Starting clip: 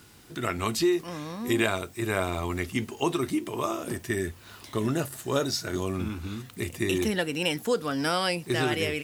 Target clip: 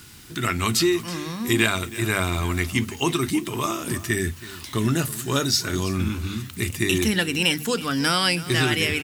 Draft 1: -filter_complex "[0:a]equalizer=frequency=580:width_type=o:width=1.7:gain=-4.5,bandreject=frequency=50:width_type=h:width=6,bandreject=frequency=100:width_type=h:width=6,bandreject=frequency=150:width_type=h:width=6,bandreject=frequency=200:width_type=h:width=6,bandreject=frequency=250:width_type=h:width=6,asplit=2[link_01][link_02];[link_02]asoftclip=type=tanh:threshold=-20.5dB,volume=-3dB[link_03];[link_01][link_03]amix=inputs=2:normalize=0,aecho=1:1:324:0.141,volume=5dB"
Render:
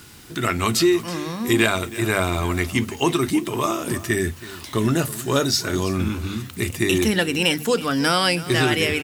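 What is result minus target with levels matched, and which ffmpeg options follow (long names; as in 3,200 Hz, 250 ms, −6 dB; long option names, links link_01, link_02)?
500 Hz band +3.0 dB
-filter_complex "[0:a]equalizer=frequency=580:width_type=o:width=1.7:gain=-11.5,bandreject=frequency=50:width_type=h:width=6,bandreject=frequency=100:width_type=h:width=6,bandreject=frequency=150:width_type=h:width=6,bandreject=frequency=200:width_type=h:width=6,bandreject=frequency=250:width_type=h:width=6,asplit=2[link_01][link_02];[link_02]asoftclip=type=tanh:threshold=-20.5dB,volume=-3dB[link_03];[link_01][link_03]amix=inputs=2:normalize=0,aecho=1:1:324:0.141,volume=5dB"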